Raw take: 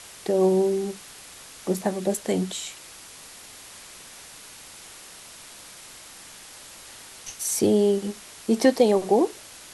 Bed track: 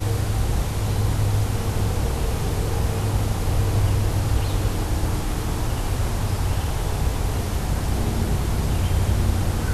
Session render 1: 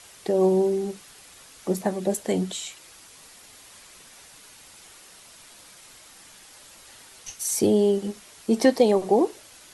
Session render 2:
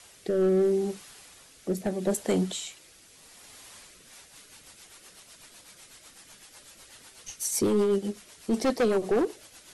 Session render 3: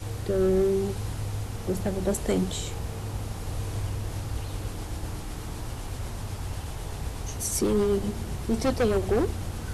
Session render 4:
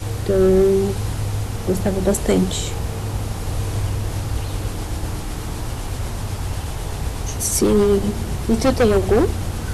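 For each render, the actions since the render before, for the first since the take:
noise reduction 6 dB, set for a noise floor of -45 dBFS
hard clipper -18.5 dBFS, distortion -10 dB; rotary cabinet horn 0.75 Hz, later 8 Hz, at 3.75 s
add bed track -11 dB
trim +8.5 dB

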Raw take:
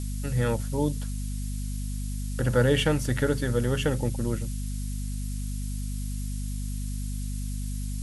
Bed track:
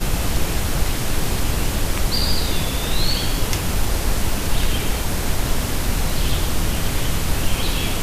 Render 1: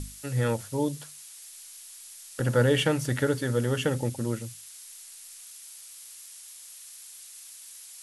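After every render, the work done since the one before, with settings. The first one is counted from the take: hum notches 50/100/150/200/250 Hz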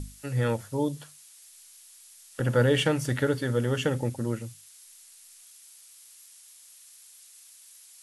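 noise print and reduce 6 dB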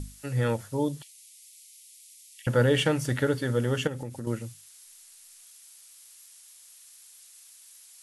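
1.02–2.47 s: steep high-pass 2 kHz 96 dB/octave; 3.87–4.27 s: compression 5:1, threshold -32 dBFS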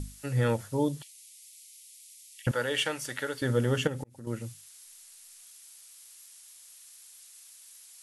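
2.51–3.42 s: high-pass 1.2 kHz 6 dB/octave; 4.04–4.48 s: fade in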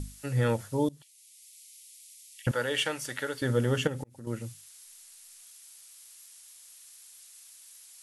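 0.89–1.84 s: fade in equal-power, from -18 dB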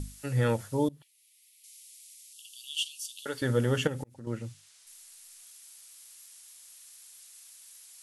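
0.88–1.64 s: peaking EQ 7 kHz -11 dB 1.7 oct; 2.33–3.26 s: steep high-pass 2.8 kHz 96 dB/octave; 4.14–4.87 s: distance through air 59 m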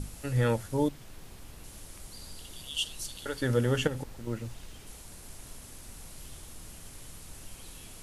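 add bed track -27.5 dB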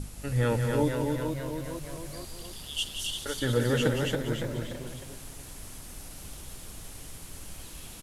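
ever faster or slower copies 501 ms, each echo +1 st, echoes 3, each echo -6 dB; loudspeakers at several distances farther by 61 m -8 dB, 94 m -4 dB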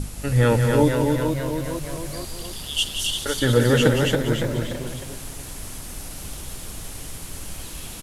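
trim +8.5 dB

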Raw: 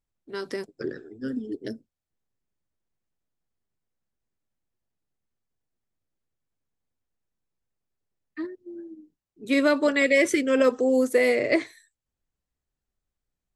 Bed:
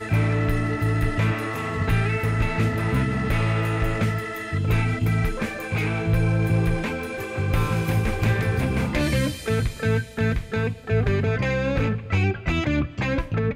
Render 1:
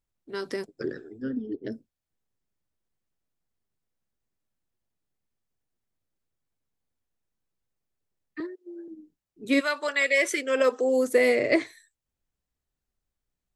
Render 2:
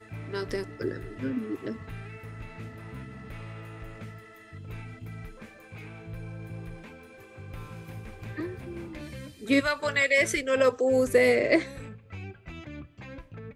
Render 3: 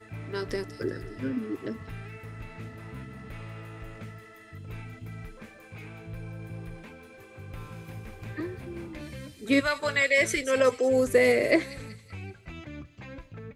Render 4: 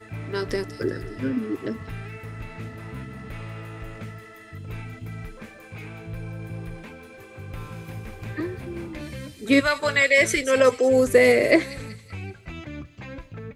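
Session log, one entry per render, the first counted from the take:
1.22–1.72 s: distance through air 240 m; 8.40–8.88 s: steep high-pass 320 Hz; 9.59–11.06 s: high-pass 1.1 kHz -> 300 Hz
add bed -19 dB
feedback echo behind a high-pass 189 ms, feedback 49%, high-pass 4.5 kHz, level -7 dB
trim +5 dB

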